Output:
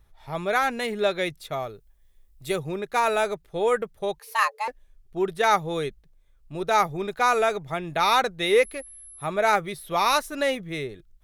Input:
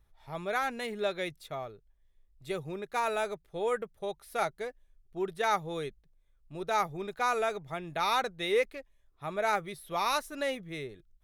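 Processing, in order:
0:01.52–0:02.56: high-shelf EQ 7,000 Hz +10.5 dB
0:04.19–0:04.68: frequency shifter +420 Hz
0:08.45–0:09.25: steady tone 11,000 Hz −51 dBFS
level +8 dB

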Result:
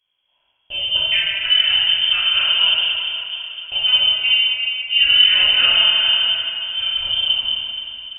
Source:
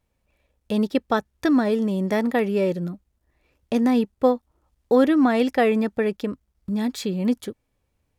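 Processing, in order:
on a send: feedback delay with all-pass diffusion 492 ms, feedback 46%, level −16 dB
on the sum: dense smooth reverb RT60 2.7 s, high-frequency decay 0.85×, DRR −9 dB
voice inversion scrambler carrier 3,300 Hz
level −5.5 dB

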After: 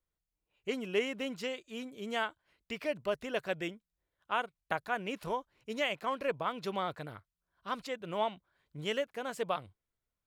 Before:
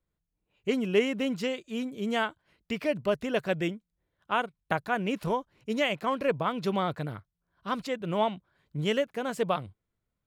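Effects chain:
parametric band 160 Hz −8 dB 2.3 octaves
level −4 dB

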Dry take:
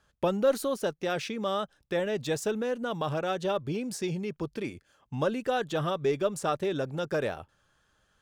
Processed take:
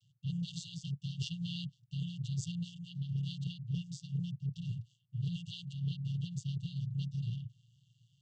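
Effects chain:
channel vocoder with a chord as carrier minor triad, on A#2
linear-phase brick-wall band-stop 160–2,700 Hz
reversed playback
downward compressor 6 to 1, threshold −45 dBFS, peak gain reduction 16.5 dB
reversed playback
level +10.5 dB

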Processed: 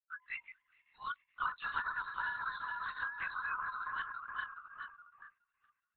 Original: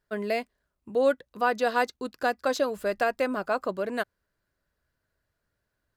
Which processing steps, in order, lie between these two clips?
feedback delay that plays each chunk backwards 210 ms, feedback 76%, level −3.5 dB
Butterworth high-pass 970 Hz 72 dB per octave
spectral tilt +3.5 dB per octave
downward compressor 12 to 1, threshold −28 dBFS, peak gain reduction 9.5 dB
noise reduction from a noise print of the clip's start 27 dB
floating-point word with a short mantissa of 4 bits
high-frequency loss of the air 360 metres
linear-prediction vocoder at 8 kHz whisper
level −1.5 dB

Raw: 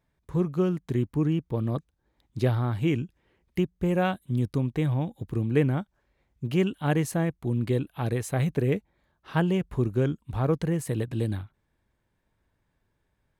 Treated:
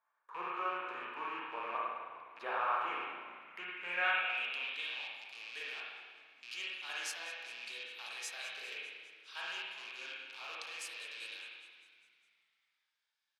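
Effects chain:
loose part that buzzes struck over −33 dBFS, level −30 dBFS
high-pass filter 840 Hz 12 dB per octave
notch filter 2,000 Hz, Q 11
echo with shifted repeats 202 ms, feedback 65%, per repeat −55 Hz, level −17 dB
spring reverb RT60 1.5 s, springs 34/52 ms, chirp 80 ms, DRR −5.5 dB
band-pass filter sweep 1,100 Hz → 4,800 Hz, 0:03.30–0:05.22
level +3 dB

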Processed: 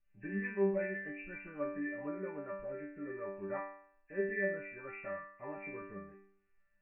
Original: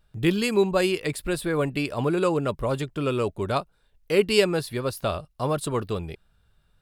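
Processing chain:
hearing-aid frequency compression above 1,500 Hz 4 to 1
rotating-speaker cabinet horn 8 Hz, later 0.65 Hz, at 0:01.60
resonators tuned to a chord G3 fifth, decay 0.61 s
level +4.5 dB

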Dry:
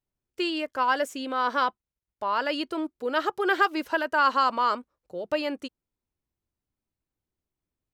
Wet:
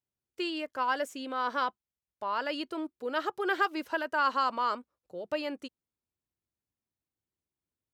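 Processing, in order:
high-pass filter 67 Hz
level −5.5 dB

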